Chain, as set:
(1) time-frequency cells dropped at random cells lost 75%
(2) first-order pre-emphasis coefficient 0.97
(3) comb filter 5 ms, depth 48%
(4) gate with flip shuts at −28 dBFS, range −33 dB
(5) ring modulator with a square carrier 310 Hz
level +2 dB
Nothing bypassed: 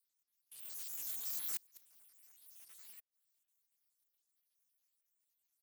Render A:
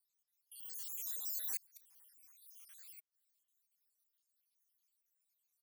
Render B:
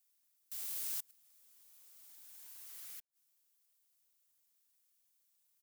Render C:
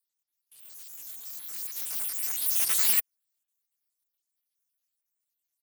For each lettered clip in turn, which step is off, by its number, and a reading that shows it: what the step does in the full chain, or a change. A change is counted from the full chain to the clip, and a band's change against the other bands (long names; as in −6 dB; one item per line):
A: 5, 1 kHz band −2.0 dB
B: 1, change in momentary loudness spread +1 LU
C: 4, 2 kHz band +3.5 dB